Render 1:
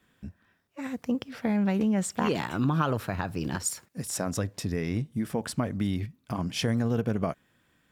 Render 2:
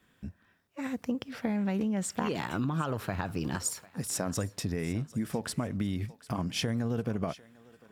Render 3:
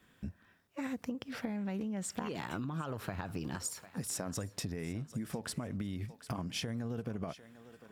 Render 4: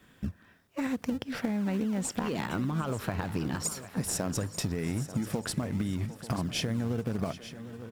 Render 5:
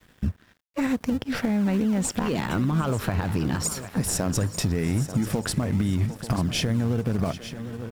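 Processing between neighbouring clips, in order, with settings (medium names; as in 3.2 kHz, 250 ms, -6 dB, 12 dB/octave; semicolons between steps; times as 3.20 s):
compression, threshold -27 dBFS, peak gain reduction 7 dB; thinning echo 749 ms, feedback 29%, high-pass 590 Hz, level -18 dB
compression, threshold -36 dBFS, peak gain reduction 9.5 dB; trim +1 dB
in parallel at -12 dB: decimation with a swept rate 32×, swing 60% 3.7 Hz; on the sum: feedback delay 889 ms, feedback 36%, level -14 dB; trim +5.5 dB
bass shelf 74 Hz +10.5 dB; in parallel at +3 dB: peak limiter -25.5 dBFS, peak gain reduction 10.5 dB; on the sum: crossover distortion -51 dBFS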